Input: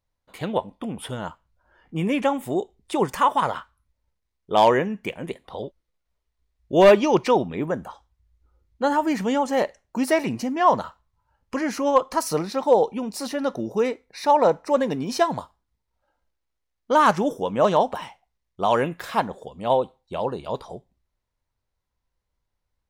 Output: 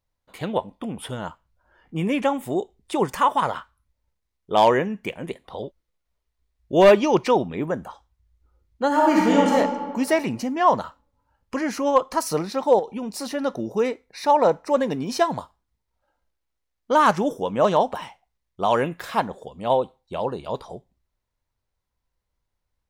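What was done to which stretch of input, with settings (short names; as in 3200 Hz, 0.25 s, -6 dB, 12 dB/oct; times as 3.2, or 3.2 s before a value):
8.89–9.51 reverb throw, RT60 1.7 s, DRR -4 dB
12.79–13.31 compressor, threshold -25 dBFS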